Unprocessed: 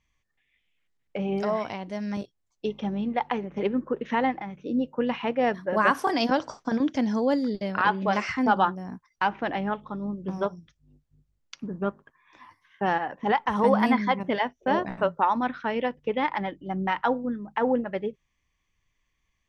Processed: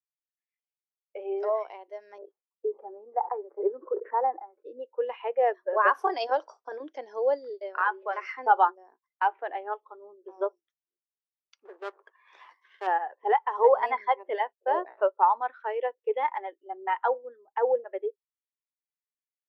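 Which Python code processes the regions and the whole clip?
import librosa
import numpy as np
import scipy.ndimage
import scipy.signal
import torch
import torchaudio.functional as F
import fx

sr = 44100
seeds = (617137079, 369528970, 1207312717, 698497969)

y = fx.chain(x, sr, fx.lowpass(hz=1500.0, slope=24),
    fx.peak_eq(hz=150.0, db=-5.0, octaves=0.42),
    fx.sustainer(db_per_s=120.0), at=(2.18, 4.65))
y = fx.chain(y, sr, fx.cheby_ripple_highpass(hz=360.0, ripple_db=6),
    fx.band_squash(depth_pct=40), at=(7.84, 8.25))
y = fx.chain(y, sr, fx.halfwave_gain(db=-7.0),
    fx.spectral_comp(ratio=2.0), at=(11.65, 12.87))
y = scipy.signal.sosfilt(scipy.signal.ellip(4, 1.0, 70, 380.0, 'highpass', fs=sr, output='sos'), y)
y = fx.spectral_expand(y, sr, expansion=1.5)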